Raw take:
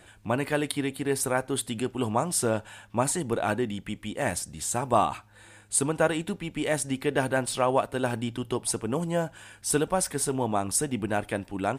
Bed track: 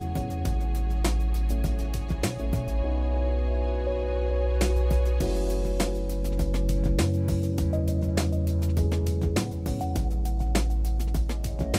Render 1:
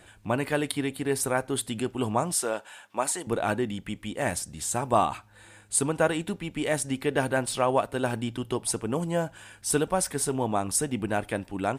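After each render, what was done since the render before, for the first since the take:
0:02.34–0:03.27: Bessel high-pass filter 490 Hz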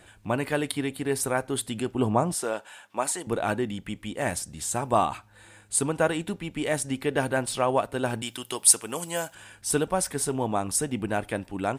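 0:01.94–0:02.44: tilt shelving filter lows +4.5 dB, about 1,400 Hz
0:08.22–0:09.35: spectral tilt +4 dB per octave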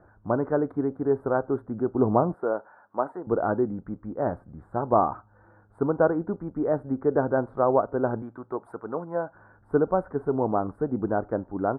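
elliptic low-pass filter 1,400 Hz, stop band 50 dB
dynamic equaliser 400 Hz, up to +5 dB, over −37 dBFS, Q 0.95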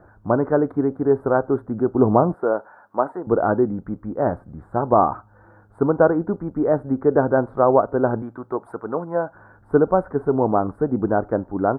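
level +6 dB
brickwall limiter −3 dBFS, peak gain reduction 2 dB

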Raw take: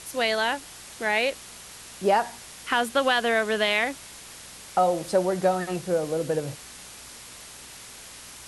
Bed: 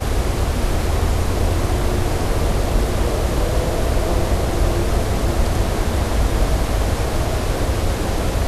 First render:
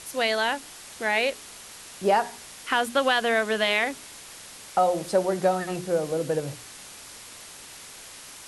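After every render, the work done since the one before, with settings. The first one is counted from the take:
hum removal 60 Hz, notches 7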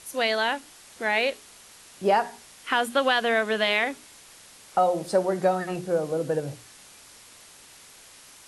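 noise reduction from a noise print 6 dB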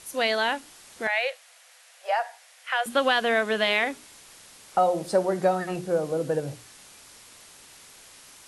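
0:01.07–0:02.86: Chebyshev high-pass with heavy ripple 490 Hz, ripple 6 dB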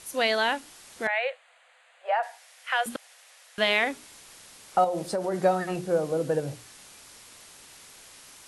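0:01.07–0:02.23: moving average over 8 samples
0:02.96–0:03.58: fill with room tone
0:04.84–0:05.34: downward compressor, threshold −24 dBFS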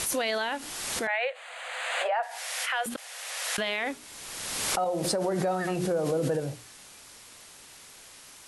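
brickwall limiter −20 dBFS, peak gain reduction 9 dB
background raised ahead of every attack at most 29 dB per second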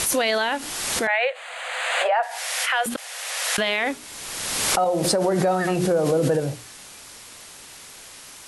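level +7 dB

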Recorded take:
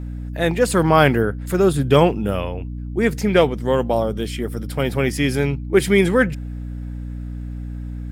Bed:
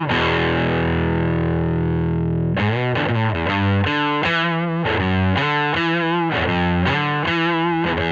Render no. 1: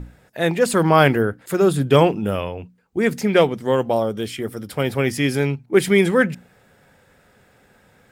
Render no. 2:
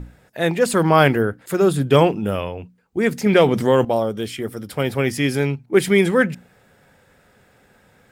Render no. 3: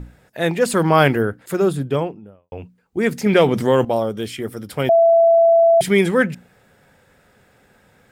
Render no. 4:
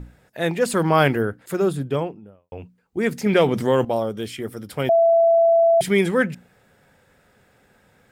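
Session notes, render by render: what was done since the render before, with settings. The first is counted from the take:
mains-hum notches 60/120/180/240/300 Hz
0:03.26–0:03.85: envelope flattener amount 50%
0:01.38–0:02.52: fade out and dull; 0:04.89–0:05.81: beep over 668 Hz −9 dBFS
level −3 dB

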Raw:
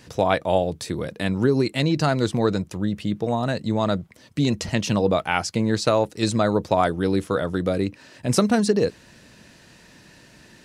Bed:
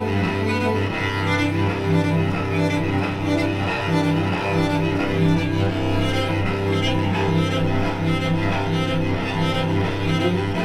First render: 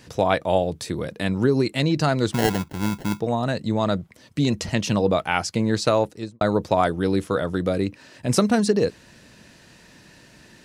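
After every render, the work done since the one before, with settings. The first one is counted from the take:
0:02.33–0:03.20: sample-rate reduction 1,200 Hz
0:06.00–0:06.41: fade out and dull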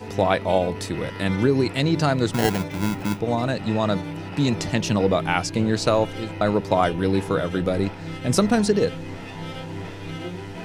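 mix in bed −12.5 dB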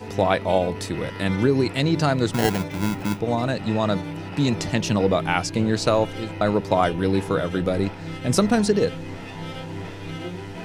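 no processing that can be heard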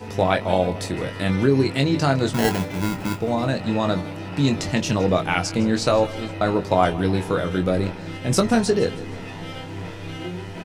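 double-tracking delay 22 ms −6.5 dB
repeating echo 158 ms, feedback 54%, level −18.5 dB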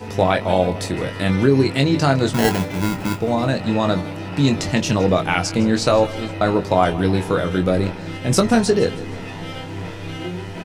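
level +3 dB
brickwall limiter −3 dBFS, peak gain reduction 2.5 dB

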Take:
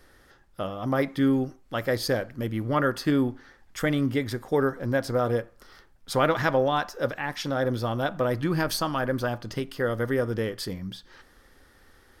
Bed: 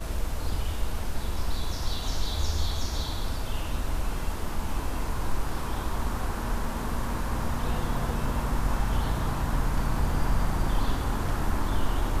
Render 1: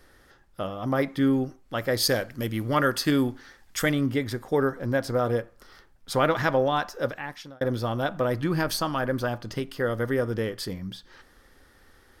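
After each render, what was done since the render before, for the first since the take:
0:01.97–0:03.92: high-shelf EQ 2,500 Hz +9.5 dB
0:07.01–0:07.61: fade out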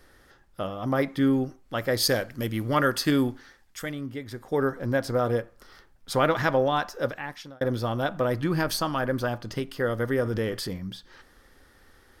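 0:03.30–0:04.71: duck −9.5 dB, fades 0.47 s
0:10.22–0:10.77: transient designer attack 0 dB, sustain +6 dB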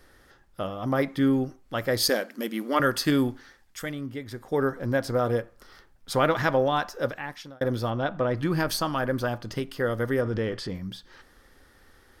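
0:02.09–0:02.80: linear-phase brick-wall high-pass 180 Hz
0:07.90–0:08.37: high-frequency loss of the air 120 metres
0:10.21–0:10.74: high-frequency loss of the air 81 metres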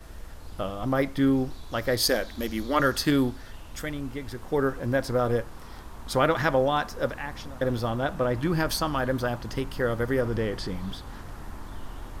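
mix in bed −12.5 dB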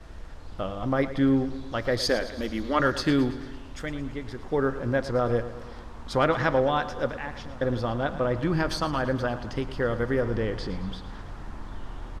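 high-frequency loss of the air 78 metres
repeating echo 111 ms, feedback 58%, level −14 dB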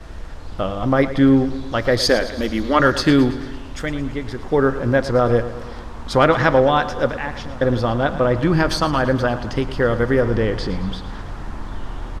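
level +8.5 dB
brickwall limiter −2 dBFS, peak gain reduction 1 dB

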